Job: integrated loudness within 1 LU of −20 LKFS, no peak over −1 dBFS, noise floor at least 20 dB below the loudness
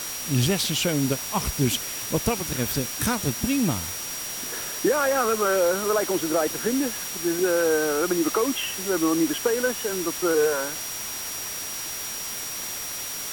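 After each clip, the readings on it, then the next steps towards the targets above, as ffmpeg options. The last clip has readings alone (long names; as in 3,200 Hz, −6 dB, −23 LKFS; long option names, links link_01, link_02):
interfering tone 5,700 Hz; level of the tone −35 dBFS; background noise floor −33 dBFS; target noise floor −45 dBFS; integrated loudness −24.5 LKFS; sample peak −8.5 dBFS; target loudness −20.0 LKFS
→ -af "bandreject=frequency=5700:width=30"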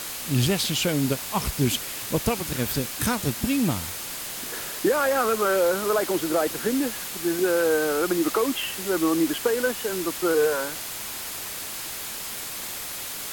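interfering tone none found; background noise floor −34 dBFS; target noise floor −45 dBFS
→ -af "afftdn=noise_reduction=11:noise_floor=-34"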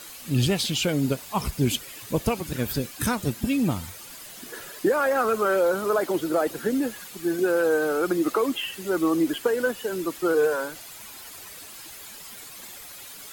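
background noise floor −43 dBFS; target noise floor −45 dBFS
→ -af "afftdn=noise_reduction=6:noise_floor=-43"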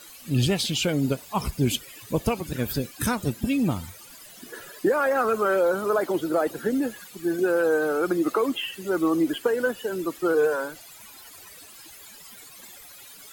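background noise floor −47 dBFS; integrated loudness −25.0 LKFS; sample peak −9.5 dBFS; target loudness −20.0 LKFS
→ -af "volume=5dB"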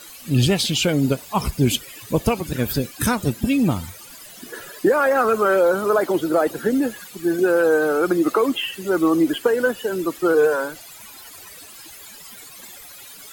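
integrated loudness −20.0 LKFS; sample peak −4.5 dBFS; background noise floor −42 dBFS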